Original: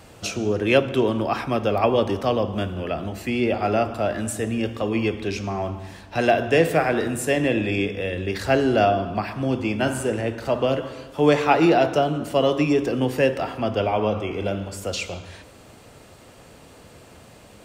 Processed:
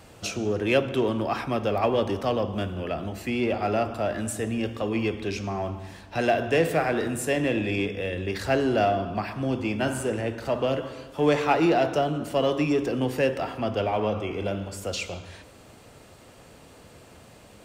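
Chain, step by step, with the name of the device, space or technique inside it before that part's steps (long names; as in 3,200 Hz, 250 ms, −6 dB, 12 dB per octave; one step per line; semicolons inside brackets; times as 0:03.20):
parallel distortion (in parallel at −8.5 dB: hard clipping −21.5 dBFS, distortion −7 dB)
on the sum: level −5.5 dB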